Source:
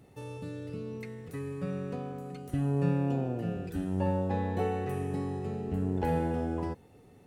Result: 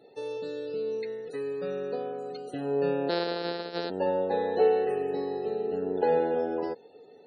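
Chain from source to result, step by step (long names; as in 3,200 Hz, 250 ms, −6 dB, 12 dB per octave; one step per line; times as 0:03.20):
0:03.09–0:03.90: samples sorted by size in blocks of 256 samples
loudspeaker in its box 440–9,100 Hz, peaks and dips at 450 Hz +9 dB, 1,100 Hz −10 dB, 2,200 Hz −6 dB, 4,100 Hz +7 dB
spectral peaks only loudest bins 64
level +6 dB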